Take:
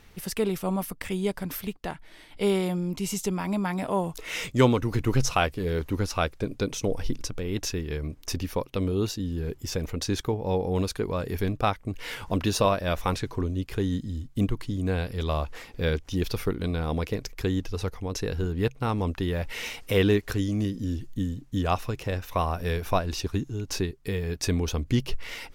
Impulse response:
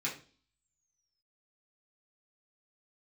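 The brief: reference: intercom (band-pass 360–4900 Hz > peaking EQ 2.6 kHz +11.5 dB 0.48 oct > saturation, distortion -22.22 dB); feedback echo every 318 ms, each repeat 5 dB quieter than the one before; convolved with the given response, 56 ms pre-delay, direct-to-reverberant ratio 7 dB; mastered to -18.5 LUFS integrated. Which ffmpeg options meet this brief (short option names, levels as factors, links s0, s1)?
-filter_complex "[0:a]aecho=1:1:318|636|954|1272|1590|1908|2226:0.562|0.315|0.176|0.0988|0.0553|0.031|0.0173,asplit=2[s0][s1];[1:a]atrim=start_sample=2205,adelay=56[s2];[s1][s2]afir=irnorm=-1:irlink=0,volume=0.282[s3];[s0][s3]amix=inputs=2:normalize=0,highpass=360,lowpass=4900,equalizer=f=2600:t=o:w=0.48:g=11.5,asoftclip=threshold=0.316,volume=3.16"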